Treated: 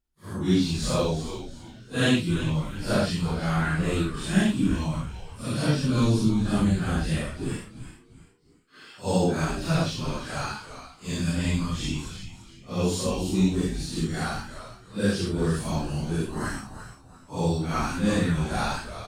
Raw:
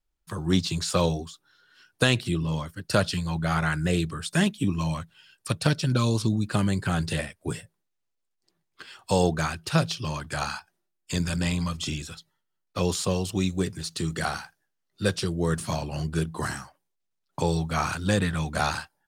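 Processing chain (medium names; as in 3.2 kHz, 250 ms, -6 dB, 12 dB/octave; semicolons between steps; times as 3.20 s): phase randomisation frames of 200 ms; peaking EQ 250 Hz +8 dB 0.84 oct; on a send: frequency-shifting echo 342 ms, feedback 33%, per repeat -140 Hz, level -11 dB; on the sum: trim -2 dB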